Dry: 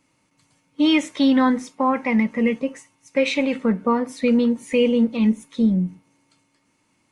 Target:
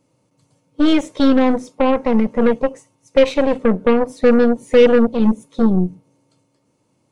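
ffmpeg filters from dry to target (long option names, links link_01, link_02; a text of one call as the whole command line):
ffmpeg -i in.wav -af "equalizer=frequency=125:width_type=o:width=1:gain=10,equalizer=frequency=500:width_type=o:width=1:gain=11,equalizer=frequency=2000:width_type=o:width=1:gain=-8,aeval=exprs='1*(cos(1*acos(clip(val(0)/1,-1,1)))-cos(1*PI/2))+0.112*(cos(8*acos(clip(val(0)/1,-1,1)))-cos(8*PI/2))':channel_layout=same,volume=-2dB" out.wav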